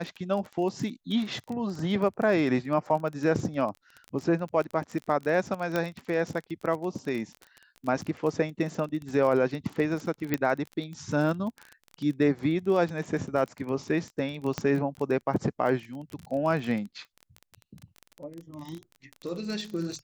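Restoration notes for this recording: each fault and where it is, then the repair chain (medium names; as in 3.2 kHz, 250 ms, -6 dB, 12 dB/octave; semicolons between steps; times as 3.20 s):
crackle 25 per s -32 dBFS
5.76 s: pop -14 dBFS
10.34 s: pop -12 dBFS
14.58 s: pop -14 dBFS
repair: de-click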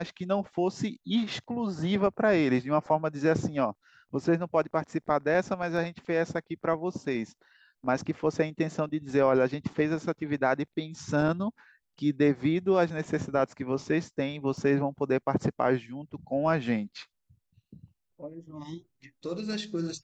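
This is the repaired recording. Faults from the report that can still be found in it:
5.76 s: pop
14.58 s: pop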